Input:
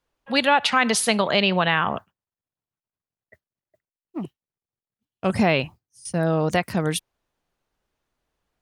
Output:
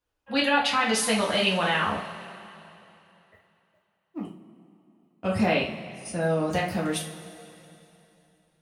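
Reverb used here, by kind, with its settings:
coupled-rooms reverb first 0.36 s, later 3 s, from −18 dB, DRR −4.5 dB
level −9 dB

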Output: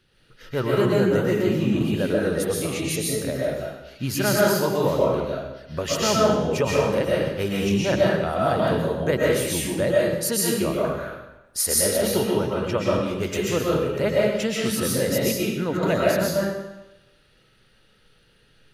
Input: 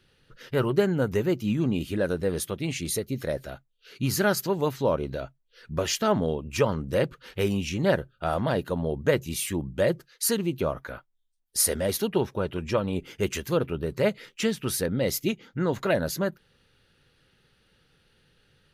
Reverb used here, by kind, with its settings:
comb and all-pass reverb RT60 0.96 s, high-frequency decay 0.95×, pre-delay 90 ms, DRR −5 dB
level −1 dB

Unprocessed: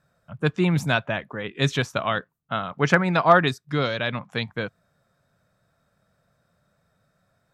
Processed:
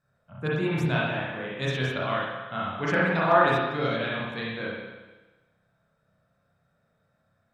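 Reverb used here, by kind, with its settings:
spring reverb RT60 1.2 s, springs 31/53 ms, chirp 40 ms, DRR −6.5 dB
level −10 dB

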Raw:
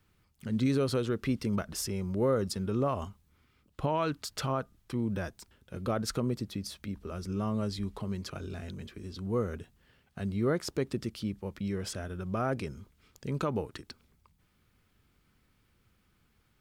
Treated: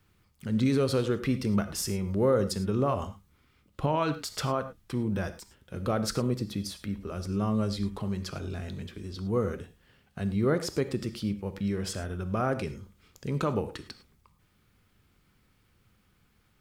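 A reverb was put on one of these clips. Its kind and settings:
reverb whose tail is shaped and stops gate 130 ms flat, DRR 10 dB
level +2.5 dB

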